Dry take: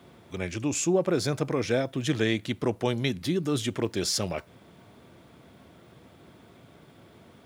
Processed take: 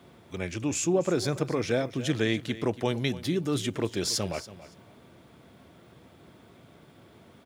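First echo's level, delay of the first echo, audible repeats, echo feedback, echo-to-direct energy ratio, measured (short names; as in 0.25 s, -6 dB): -16.0 dB, 0.282 s, 2, 18%, -16.0 dB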